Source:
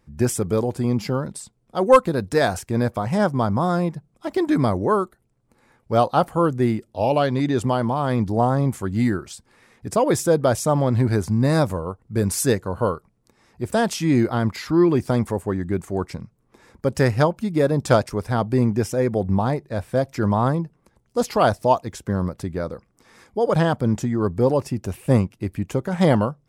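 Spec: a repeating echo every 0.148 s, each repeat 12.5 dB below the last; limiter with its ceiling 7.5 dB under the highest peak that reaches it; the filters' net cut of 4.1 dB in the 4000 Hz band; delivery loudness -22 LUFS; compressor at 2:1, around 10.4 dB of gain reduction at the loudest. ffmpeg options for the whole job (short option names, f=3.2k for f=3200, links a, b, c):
-af "equalizer=f=4k:t=o:g=-5.5,acompressor=threshold=-27dB:ratio=2,alimiter=limit=-20dB:level=0:latency=1,aecho=1:1:148|296|444:0.237|0.0569|0.0137,volume=8dB"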